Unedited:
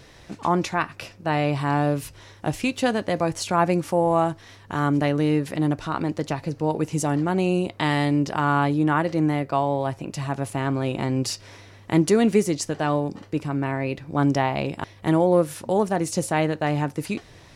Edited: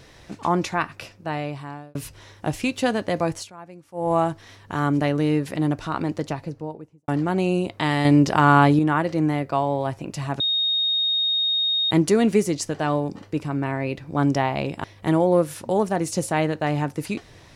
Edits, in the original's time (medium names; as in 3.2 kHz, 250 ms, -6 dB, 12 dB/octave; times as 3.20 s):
0.88–1.95 s: fade out linear
3.32–4.12 s: dip -21.5 dB, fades 0.19 s
6.11–7.08 s: studio fade out
8.05–8.79 s: gain +6 dB
10.40–11.91 s: bleep 3.72 kHz -19 dBFS